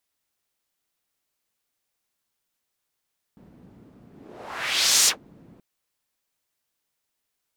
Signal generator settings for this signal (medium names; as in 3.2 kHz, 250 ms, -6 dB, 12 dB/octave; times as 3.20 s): whoosh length 2.23 s, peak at 1.70 s, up 1.04 s, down 0.12 s, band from 220 Hz, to 6.6 kHz, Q 1.6, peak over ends 34 dB